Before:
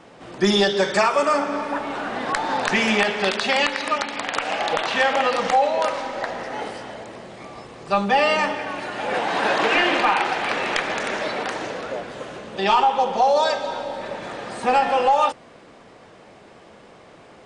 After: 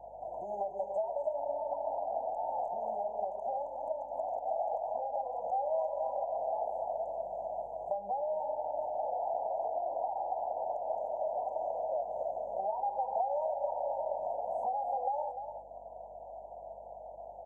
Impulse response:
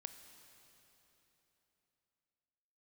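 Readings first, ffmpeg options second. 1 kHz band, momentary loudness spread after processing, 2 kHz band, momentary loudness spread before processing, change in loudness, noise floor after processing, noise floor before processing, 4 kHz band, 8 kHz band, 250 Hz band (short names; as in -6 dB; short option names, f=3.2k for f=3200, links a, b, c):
-12.5 dB, 10 LU, under -40 dB, 14 LU, -14.0 dB, -48 dBFS, -47 dBFS, under -40 dB, under -40 dB, under -30 dB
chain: -filter_complex "[0:a]acrossover=split=560 2600:gain=0.0891 1 0.112[a][b][c];[a][b][c]amix=inputs=3:normalize=0,acrossover=split=500|1300[d][e][f];[d]acompressor=threshold=-43dB:ratio=4[g];[e]acompressor=threshold=-35dB:ratio=4[h];[f]acompressor=threshold=-40dB:ratio=4[i];[g][h][i]amix=inputs=3:normalize=0,aeval=exprs='val(0)+0.000631*(sin(2*PI*50*n/s)+sin(2*PI*2*50*n/s)/2+sin(2*PI*3*50*n/s)/3+sin(2*PI*4*50*n/s)/4+sin(2*PI*5*50*n/s)/5)':c=same,firequalizer=gain_entry='entry(100,0);entry(380,-10);entry(660,12);entry(1000,-7);entry(1400,10);entry(5100,-10)':delay=0.05:min_phase=1,acompressor=threshold=-31dB:ratio=3,afftfilt=real='re*(1-between(b*sr/4096,1000,6200))':imag='im*(1-between(b*sr/4096,1000,6200))':win_size=4096:overlap=0.75,aecho=1:1:296:0.355"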